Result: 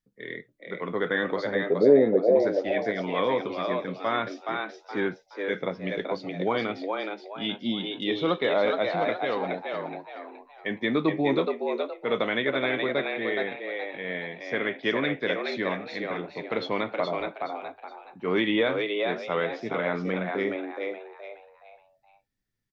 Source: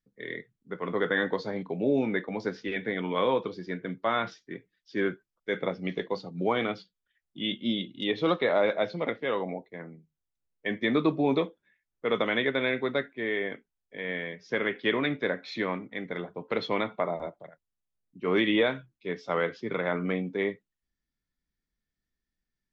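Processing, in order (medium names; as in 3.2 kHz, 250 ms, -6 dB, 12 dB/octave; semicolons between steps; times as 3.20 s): 1.55–2.36 s: resonant low-pass 480 Hz, resonance Q 4.9; on a send: frequency-shifting echo 421 ms, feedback 33%, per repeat +97 Hz, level -4 dB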